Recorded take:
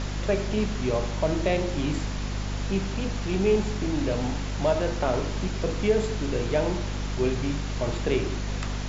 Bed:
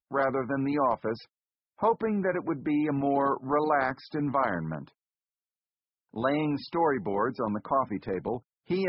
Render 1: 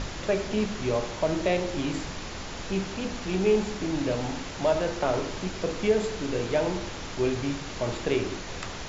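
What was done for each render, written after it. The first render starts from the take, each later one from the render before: de-hum 50 Hz, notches 9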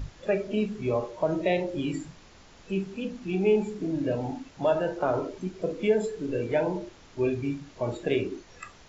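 noise print and reduce 16 dB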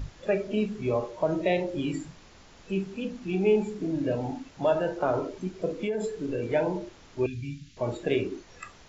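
5.79–6.44 s: compression, threshold -25 dBFS; 7.26–7.77 s: Chebyshev band-stop 170–2800 Hz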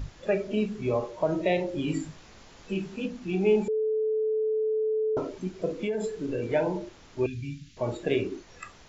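1.86–3.06 s: doubling 19 ms -3 dB; 3.68–5.17 s: bleep 435 Hz -23.5 dBFS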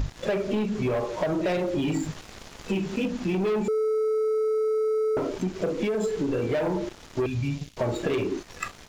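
waveshaping leveller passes 3; compression, threshold -24 dBFS, peak gain reduction 8.5 dB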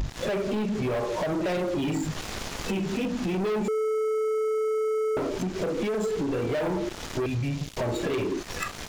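compression 12:1, threshold -34 dBFS, peak gain reduction 12 dB; waveshaping leveller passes 3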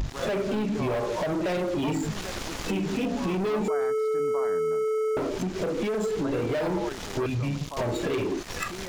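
add bed -11.5 dB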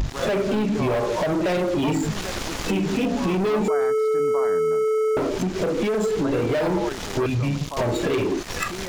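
trim +5 dB

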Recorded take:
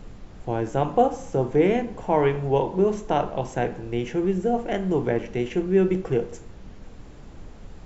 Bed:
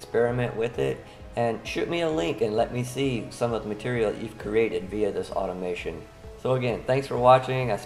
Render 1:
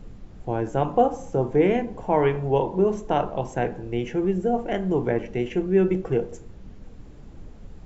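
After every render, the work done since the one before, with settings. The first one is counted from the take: noise reduction 6 dB, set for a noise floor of -44 dBFS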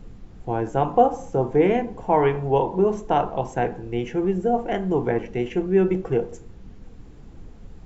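band-stop 590 Hz, Q 12; dynamic bell 820 Hz, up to +4 dB, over -33 dBFS, Q 0.99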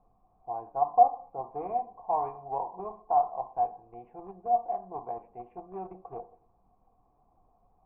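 in parallel at -6 dB: Schmitt trigger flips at -16 dBFS; on the sum: cascade formant filter a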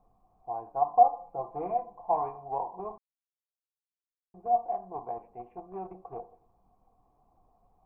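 1.04–2.22 s: comb 5.9 ms; 2.98–4.34 s: mute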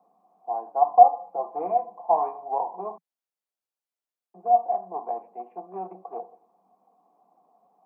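steep high-pass 170 Hz 72 dB/octave; peaking EQ 710 Hz +6.5 dB 1.4 oct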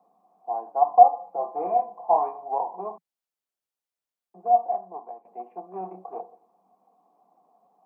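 1.39–2.19 s: doubling 29 ms -6.5 dB; 4.64–5.25 s: fade out, to -17 dB; 5.78–6.21 s: doubling 27 ms -6 dB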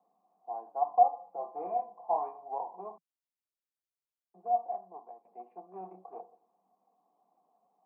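trim -9.5 dB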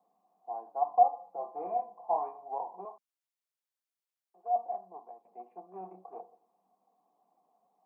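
2.85–4.56 s: high-pass 500 Hz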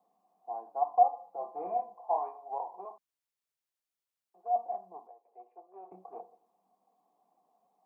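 0.84–1.41 s: bass shelf 160 Hz -9.5 dB; 1.95–2.91 s: high-pass 350 Hz; 5.07–5.92 s: ladder high-pass 350 Hz, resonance 35%

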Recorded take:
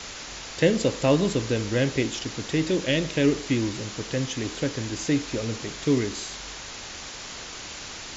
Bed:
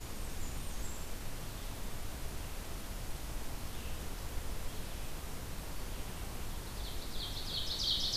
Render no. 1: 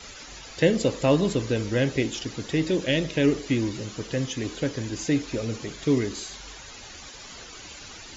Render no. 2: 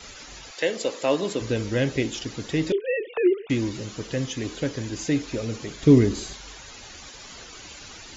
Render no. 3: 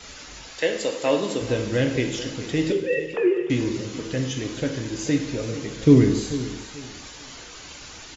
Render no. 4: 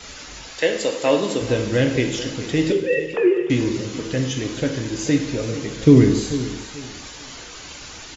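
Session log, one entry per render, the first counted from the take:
noise reduction 12 dB, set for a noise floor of -39 dBFS
0.50–1.40 s: high-pass 600 Hz -> 270 Hz; 2.72–3.50 s: formants replaced by sine waves; 5.83–6.33 s: bass shelf 450 Hz +11 dB
feedback delay 436 ms, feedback 25%, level -14.5 dB; plate-style reverb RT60 0.89 s, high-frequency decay 1×, DRR 4.5 dB
trim +3.5 dB; peak limiter -2 dBFS, peak gain reduction 2 dB

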